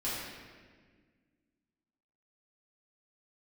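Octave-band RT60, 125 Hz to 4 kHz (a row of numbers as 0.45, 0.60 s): 2.2, 2.5, 1.8, 1.4, 1.5, 1.2 s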